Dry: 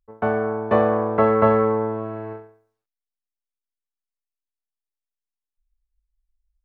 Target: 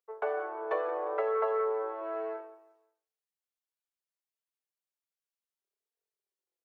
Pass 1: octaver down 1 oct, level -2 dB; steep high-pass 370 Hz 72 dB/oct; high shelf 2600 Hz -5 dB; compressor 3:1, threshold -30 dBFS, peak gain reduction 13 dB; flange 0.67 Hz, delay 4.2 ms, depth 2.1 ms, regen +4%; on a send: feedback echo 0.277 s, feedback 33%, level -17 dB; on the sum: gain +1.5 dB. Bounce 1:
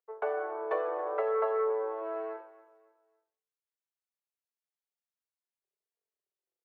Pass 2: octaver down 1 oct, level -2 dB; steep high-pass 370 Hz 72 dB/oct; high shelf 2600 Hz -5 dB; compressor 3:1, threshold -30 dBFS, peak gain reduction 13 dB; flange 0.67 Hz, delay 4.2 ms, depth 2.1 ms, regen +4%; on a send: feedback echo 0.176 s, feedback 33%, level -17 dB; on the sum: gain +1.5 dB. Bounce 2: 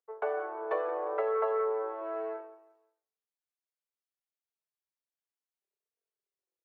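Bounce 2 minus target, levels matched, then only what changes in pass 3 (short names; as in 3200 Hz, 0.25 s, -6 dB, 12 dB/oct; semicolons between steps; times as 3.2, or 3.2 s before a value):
4000 Hz band -2.5 dB
remove: high shelf 2600 Hz -5 dB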